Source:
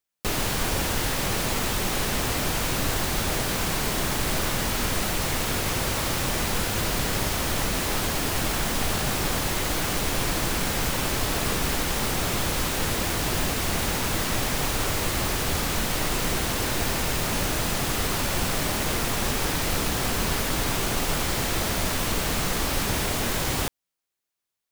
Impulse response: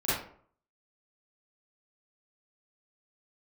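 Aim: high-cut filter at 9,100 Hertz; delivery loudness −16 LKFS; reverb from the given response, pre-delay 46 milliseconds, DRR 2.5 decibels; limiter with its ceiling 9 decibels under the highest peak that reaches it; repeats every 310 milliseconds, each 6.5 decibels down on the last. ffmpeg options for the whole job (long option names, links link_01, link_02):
-filter_complex "[0:a]lowpass=9100,alimiter=limit=-21dB:level=0:latency=1,aecho=1:1:310|620|930|1240|1550|1860:0.473|0.222|0.105|0.0491|0.0231|0.0109,asplit=2[link_01][link_02];[1:a]atrim=start_sample=2205,adelay=46[link_03];[link_02][link_03]afir=irnorm=-1:irlink=0,volume=-12.5dB[link_04];[link_01][link_04]amix=inputs=2:normalize=0,volume=11.5dB"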